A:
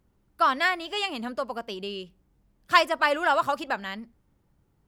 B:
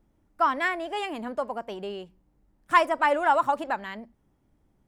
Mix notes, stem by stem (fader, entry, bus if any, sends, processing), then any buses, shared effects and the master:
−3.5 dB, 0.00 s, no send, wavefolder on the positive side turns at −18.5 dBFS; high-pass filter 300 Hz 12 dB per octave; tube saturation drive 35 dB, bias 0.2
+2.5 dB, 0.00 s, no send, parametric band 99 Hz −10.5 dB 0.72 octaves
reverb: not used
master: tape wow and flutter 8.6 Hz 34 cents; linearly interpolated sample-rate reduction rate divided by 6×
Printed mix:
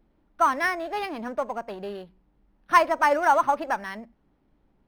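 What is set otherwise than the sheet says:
stem B: polarity flipped
master: missing tape wow and flutter 8.6 Hz 34 cents

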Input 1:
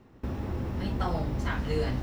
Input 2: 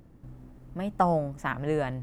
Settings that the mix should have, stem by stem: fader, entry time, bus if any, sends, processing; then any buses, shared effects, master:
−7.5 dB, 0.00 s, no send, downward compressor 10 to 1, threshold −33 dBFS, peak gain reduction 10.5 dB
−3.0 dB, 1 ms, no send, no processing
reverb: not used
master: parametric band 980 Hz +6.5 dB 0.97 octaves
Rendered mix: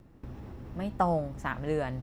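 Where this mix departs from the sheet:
stem 2: polarity flipped
master: missing parametric band 980 Hz +6.5 dB 0.97 octaves

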